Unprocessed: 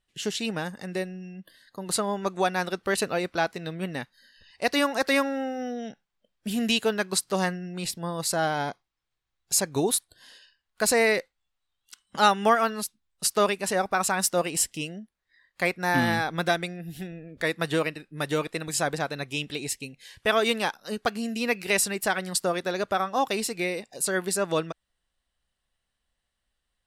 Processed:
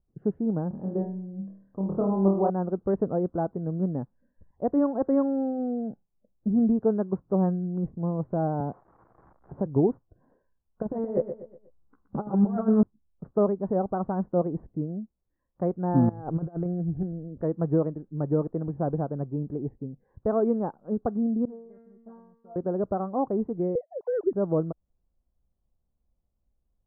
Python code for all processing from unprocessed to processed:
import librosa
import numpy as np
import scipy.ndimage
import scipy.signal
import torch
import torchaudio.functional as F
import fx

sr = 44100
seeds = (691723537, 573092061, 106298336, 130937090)

y = fx.chain(x, sr, fx.lowpass(hz=1700.0, slope=12),
    fx.room_flutter(wall_m=4.4, rt60_s=0.51), at=(0.68, 2.5))
y = fx.chain(y, sr, fx.crossing_spikes(level_db=-23.0),
    fx.band_squash(depth_pct=40), at=(8.6, 9.66))
y = fx.chain(y, sr, fx.doubler(ms=14.0, db=-4.0),
    fx.over_compress(threshold_db=-26.0, ratio=-0.5),
    fx.echo_feedback(ms=121, feedback_pct=39, wet_db=-10), at=(10.82, 12.83))
y = fx.chain(y, sr, fx.over_compress(threshold_db=-31.0, ratio=-0.5),
    fx.peak_eq(hz=220.0, db=-13.5, octaves=0.23), at=(16.09, 17.03))
y = fx.chain(y, sr, fx.comb_fb(f0_hz=230.0, decay_s=0.85, harmonics='all', damping=0.0, mix_pct=100),
    fx.doppler_dist(depth_ms=0.21), at=(21.45, 22.56))
y = fx.chain(y, sr, fx.sine_speech(),
    fx.band_squash(depth_pct=40), at=(23.75, 24.34))
y = scipy.signal.sosfilt(scipy.signal.bessel(8, 650.0, 'lowpass', norm='mag', fs=sr, output='sos'), y)
y = fx.low_shelf(y, sr, hz=460.0, db=10.5)
y = F.gain(torch.from_numpy(y), -2.5).numpy()